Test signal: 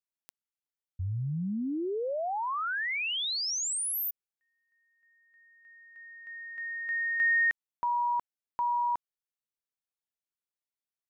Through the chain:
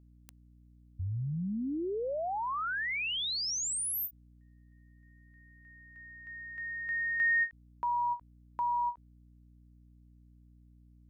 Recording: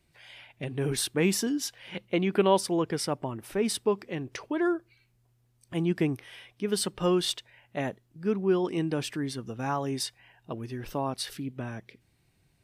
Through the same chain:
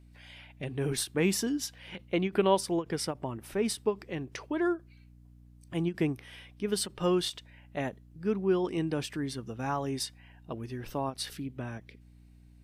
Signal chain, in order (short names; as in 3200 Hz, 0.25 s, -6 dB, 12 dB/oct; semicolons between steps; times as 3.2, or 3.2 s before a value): hum 60 Hz, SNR 23 dB; ending taper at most 330 dB/s; gain -2 dB